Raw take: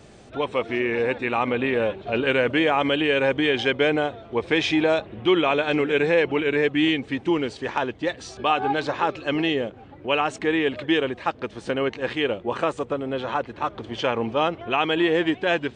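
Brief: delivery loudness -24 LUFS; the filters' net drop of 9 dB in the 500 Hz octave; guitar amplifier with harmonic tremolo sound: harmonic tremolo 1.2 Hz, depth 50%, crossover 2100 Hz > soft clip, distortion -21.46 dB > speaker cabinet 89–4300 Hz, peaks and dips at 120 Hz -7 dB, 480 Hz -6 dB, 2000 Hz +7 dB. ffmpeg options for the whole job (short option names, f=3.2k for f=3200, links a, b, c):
-filter_complex "[0:a]equalizer=f=500:t=o:g=-8,acrossover=split=2100[a][b];[a]aeval=exprs='val(0)*(1-0.5/2+0.5/2*cos(2*PI*1.2*n/s))':c=same[c];[b]aeval=exprs='val(0)*(1-0.5/2-0.5/2*cos(2*PI*1.2*n/s))':c=same[d];[c][d]amix=inputs=2:normalize=0,asoftclip=threshold=-15.5dB,highpass=89,equalizer=f=120:t=q:w=4:g=-7,equalizer=f=480:t=q:w=4:g=-6,equalizer=f=2k:t=q:w=4:g=7,lowpass=f=4.3k:w=0.5412,lowpass=f=4.3k:w=1.3066,volume=4.5dB"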